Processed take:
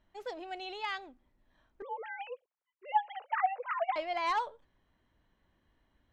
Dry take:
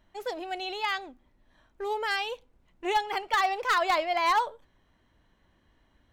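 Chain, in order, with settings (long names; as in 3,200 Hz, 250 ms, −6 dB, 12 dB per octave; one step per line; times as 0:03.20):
0:01.82–0:03.96: three sine waves on the formant tracks
high-frequency loss of the air 56 metres
level −6.5 dB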